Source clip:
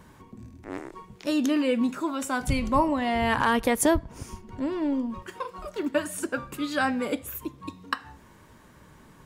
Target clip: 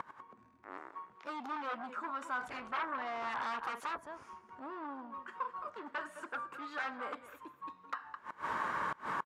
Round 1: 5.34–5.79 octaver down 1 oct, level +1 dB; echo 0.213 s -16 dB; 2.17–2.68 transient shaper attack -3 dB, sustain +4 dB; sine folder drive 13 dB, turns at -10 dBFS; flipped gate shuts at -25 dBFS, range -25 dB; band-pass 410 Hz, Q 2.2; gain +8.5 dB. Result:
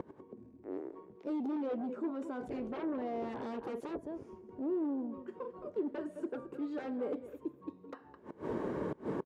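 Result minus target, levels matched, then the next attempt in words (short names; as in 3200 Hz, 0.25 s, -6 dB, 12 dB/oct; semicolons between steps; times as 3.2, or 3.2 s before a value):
1000 Hz band -11.0 dB
5.34–5.79 octaver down 1 oct, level +1 dB; echo 0.213 s -16 dB; 2.17–2.68 transient shaper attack -3 dB, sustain +4 dB; sine folder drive 13 dB, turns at -10 dBFS; flipped gate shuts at -25 dBFS, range -25 dB; band-pass 1200 Hz, Q 2.2; gain +8.5 dB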